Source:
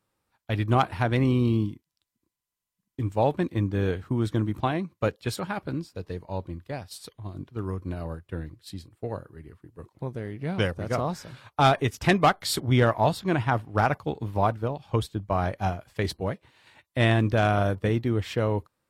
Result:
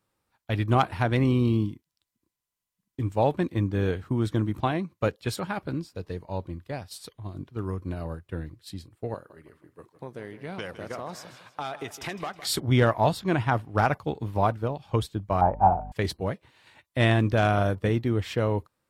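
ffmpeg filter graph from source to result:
ffmpeg -i in.wav -filter_complex "[0:a]asettb=1/sr,asplit=3[link_01][link_02][link_03];[link_01]atrim=end=9.144[link_04];[link_02]atrim=start=9.14:end=12.47,asetpts=PTS-STARTPTS,afade=type=in:duration=0.004:curve=qsin,afade=type=out:start_time=3.326:duration=0.004:curve=qsin,highpass=frequency=400:poles=1,acompressor=threshold=-30dB:ratio=6:attack=3.2:release=140:knee=1:detection=peak,aecho=1:1:159|318|477|636:0.2|0.0778|0.0303|0.0118,atrim=end_sample=146853[link_05];[link_03]atrim=start=12.466[link_06];[link_04][link_05]acrossfade=duration=0.004:curve1=hsin:curve2=qsin[link_07];[link_07][link_06]acrossfade=duration=0.004:curve1=qsin:curve2=hsin,asettb=1/sr,asplit=3[link_08][link_09][link_10];[link_08]atrim=end=15.414[link_11];[link_09]atrim=start=15.41:end=15.92,asetpts=PTS-STARTPTS,afade=type=in:duration=0.004:curve=qsin,afade=type=out:start_time=0.506:duration=0.004:curve=qsin,lowpass=frequency=870:width_type=q:width=6.9,bandreject=frequency=149.7:width_type=h:width=4,bandreject=frequency=299.4:width_type=h:width=4,bandreject=frequency=449.1:width_type=h:width=4,bandreject=frequency=598.8:width_type=h:width=4,bandreject=frequency=748.5:width_type=h:width=4,bandreject=frequency=898.2:width_type=h:width=4,aeval=exprs='val(0)+0.0126*(sin(2*PI*50*n/s)+sin(2*PI*2*50*n/s)/2+sin(2*PI*3*50*n/s)/3+sin(2*PI*4*50*n/s)/4+sin(2*PI*5*50*n/s)/5)':channel_layout=same[link_12];[link_10]atrim=start=15.916[link_13];[link_11][link_12]acrossfade=duration=0.004:curve1=hsin:curve2=qsin[link_14];[link_14][link_13]acrossfade=duration=0.004:curve1=qsin:curve2=hsin" out.wav

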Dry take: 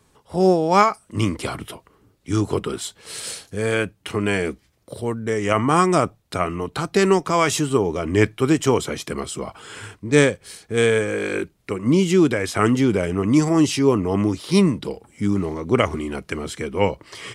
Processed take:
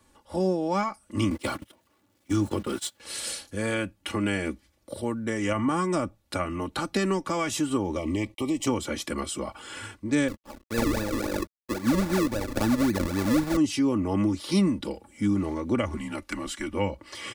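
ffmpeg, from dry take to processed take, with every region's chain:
ffmpeg -i in.wav -filter_complex "[0:a]asettb=1/sr,asplit=3[link_01][link_02][link_03];[link_01]atrim=end=1.304[link_04];[link_02]atrim=start=1.3:end=3,asetpts=PTS-STARTPTS,afade=type=in:duration=0.004:curve=qsin,afade=type=out:start_time=1.696:duration=0.004:curve=qsin,aeval=exprs='val(0)+0.5*0.0211*sgn(val(0))':channel_layout=same,highpass=frequency=78:width=0.5412,highpass=frequency=78:width=1.3066,agate=range=-26dB:threshold=-29dB:ratio=16:release=100:detection=peak[link_05];[link_03]atrim=start=2.996[link_06];[link_04][link_05]acrossfade=duration=0.004:curve1=hsin:curve2=qsin[link_07];[link_07][link_06]acrossfade=duration=0.004:curve1=qsin:curve2=hsin,asettb=1/sr,asplit=3[link_08][link_09][link_10];[link_08]atrim=end=7.984[link_11];[link_09]atrim=start=7.98:end=8.67,asetpts=PTS-STARTPTS,afade=type=in:duration=0.004:curve=qsin,afade=type=out:start_time=0.686:duration=0.004:curve=qsin,acompressor=threshold=-21dB:ratio=2.5:attack=3.2:release=140:knee=1:detection=peak,aeval=exprs='sgn(val(0))*max(abs(val(0))-0.00299,0)':channel_layout=same,asuperstop=centerf=1500:order=8:qfactor=2.1[link_12];[link_10]atrim=start=8.666[link_13];[link_11][link_12]acrossfade=duration=0.004:curve1=hsin:curve2=qsin[link_14];[link_14][link_13]acrossfade=duration=0.004:curve1=qsin:curve2=hsin,asettb=1/sr,asplit=3[link_15][link_16][link_17];[link_15]atrim=end=10.284[link_18];[link_16]atrim=start=10.28:end=13.57,asetpts=PTS-STARTPTS,afade=type=in:duration=0.004:curve=qsin,afade=type=out:start_time=3.286:duration=0.004:curve=qsin,acrusher=samples=40:mix=1:aa=0.000001:lfo=1:lforange=40:lforate=3.7,equalizer=frequency=3000:width_type=o:width=0.27:gain=-7.5,aeval=exprs='sgn(val(0))*max(abs(val(0))-0.00596,0)':channel_layout=same[link_19];[link_17]atrim=start=13.566[link_20];[link_18][link_19]acrossfade=duration=0.004:curve1=hsin:curve2=qsin[link_21];[link_21][link_20]acrossfade=duration=0.004:curve1=qsin:curve2=hsin,asettb=1/sr,asplit=3[link_22][link_23][link_24];[link_22]atrim=end=15.974[link_25];[link_23]atrim=start=15.97:end=16.73,asetpts=PTS-STARTPTS,afade=type=in:duration=0.004:curve=qsin,afade=type=out:start_time=0.756:duration=0.004:curve=qsin,highpass=frequency=410:poles=1,volume=17dB,asoftclip=hard,volume=-17dB,afreqshift=-110[link_26];[link_24]atrim=start=16.726[link_27];[link_25][link_26]acrossfade=duration=0.004:curve1=hsin:curve2=qsin[link_28];[link_28][link_27]acrossfade=duration=0.004:curve1=qsin:curve2=hsin,aecho=1:1:3.5:0.66,acrossover=split=230[link_29][link_30];[link_30]acompressor=threshold=-23dB:ratio=4[link_31];[link_29][link_31]amix=inputs=2:normalize=0,volume=-3.5dB" out.wav

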